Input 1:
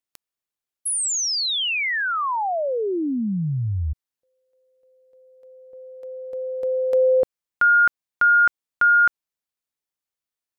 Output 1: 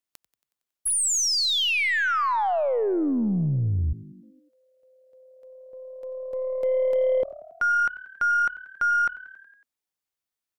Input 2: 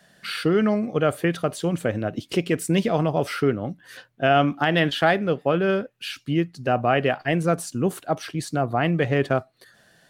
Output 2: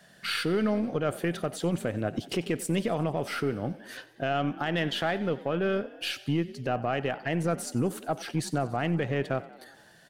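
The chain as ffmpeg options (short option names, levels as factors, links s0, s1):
-filter_complex "[0:a]alimiter=limit=0.119:level=0:latency=1:release=299,asplit=7[s0][s1][s2][s3][s4][s5][s6];[s1]adelay=92,afreqshift=37,volume=0.119[s7];[s2]adelay=184,afreqshift=74,volume=0.0759[s8];[s3]adelay=276,afreqshift=111,volume=0.0484[s9];[s4]adelay=368,afreqshift=148,volume=0.0313[s10];[s5]adelay=460,afreqshift=185,volume=0.02[s11];[s6]adelay=552,afreqshift=222,volume=0.0127[s12];[s0][s7][s8][s9][s10][s11][s12]amix=inputs=7:normalize=0,aeval=exprs='0.158*(cos(1*acos(clip(val(0)/0.158,-1,1)))-cos(1*PI/2))+0.00447*(cos(6*acos(clip(val(0)/0.158,-1,1)))-cos(6*PI/2))':c=same"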